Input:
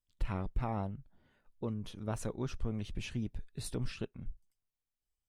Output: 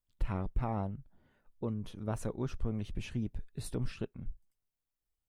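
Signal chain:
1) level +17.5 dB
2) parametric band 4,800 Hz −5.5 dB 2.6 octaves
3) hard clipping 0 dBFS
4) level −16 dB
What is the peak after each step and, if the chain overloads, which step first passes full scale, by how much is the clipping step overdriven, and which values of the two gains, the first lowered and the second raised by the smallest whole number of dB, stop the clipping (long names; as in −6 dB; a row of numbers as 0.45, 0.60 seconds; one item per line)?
−4.0, −5.0, −5.0, −21.0 dBFS
no step passes full scale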